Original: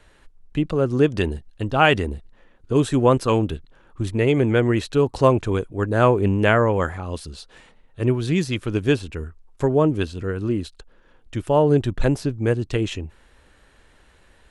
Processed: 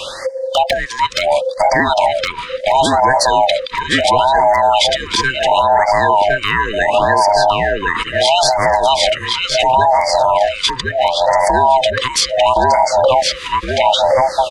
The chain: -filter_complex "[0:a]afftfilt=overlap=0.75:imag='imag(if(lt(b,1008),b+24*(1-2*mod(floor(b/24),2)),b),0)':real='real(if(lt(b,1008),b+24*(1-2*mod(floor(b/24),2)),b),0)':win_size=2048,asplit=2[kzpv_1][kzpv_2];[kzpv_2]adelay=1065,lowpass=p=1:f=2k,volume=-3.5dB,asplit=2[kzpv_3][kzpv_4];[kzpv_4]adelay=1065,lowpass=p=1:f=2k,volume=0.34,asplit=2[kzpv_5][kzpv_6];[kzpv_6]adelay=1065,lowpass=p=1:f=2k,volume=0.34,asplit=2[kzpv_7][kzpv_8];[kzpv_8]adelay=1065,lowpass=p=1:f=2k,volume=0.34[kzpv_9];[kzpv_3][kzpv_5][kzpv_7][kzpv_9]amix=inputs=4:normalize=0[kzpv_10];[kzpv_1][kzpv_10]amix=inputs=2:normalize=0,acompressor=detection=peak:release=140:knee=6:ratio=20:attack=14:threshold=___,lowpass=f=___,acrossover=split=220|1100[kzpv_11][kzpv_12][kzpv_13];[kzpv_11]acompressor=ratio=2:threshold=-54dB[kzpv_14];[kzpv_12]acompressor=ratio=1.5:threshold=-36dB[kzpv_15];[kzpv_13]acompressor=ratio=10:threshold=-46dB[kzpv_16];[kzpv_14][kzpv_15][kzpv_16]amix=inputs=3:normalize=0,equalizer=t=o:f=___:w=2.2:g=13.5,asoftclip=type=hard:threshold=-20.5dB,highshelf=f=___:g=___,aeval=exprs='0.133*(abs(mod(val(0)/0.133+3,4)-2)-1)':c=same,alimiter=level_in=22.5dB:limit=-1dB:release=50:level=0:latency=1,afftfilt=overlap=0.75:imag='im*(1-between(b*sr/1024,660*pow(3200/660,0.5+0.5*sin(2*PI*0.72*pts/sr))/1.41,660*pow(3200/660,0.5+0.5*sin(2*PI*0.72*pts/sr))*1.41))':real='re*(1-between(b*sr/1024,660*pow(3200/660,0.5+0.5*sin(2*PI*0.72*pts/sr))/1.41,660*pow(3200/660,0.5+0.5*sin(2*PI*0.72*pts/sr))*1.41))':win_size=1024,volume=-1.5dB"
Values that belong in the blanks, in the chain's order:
-29dB, 7.7k, 2.9k, 3.7k, 11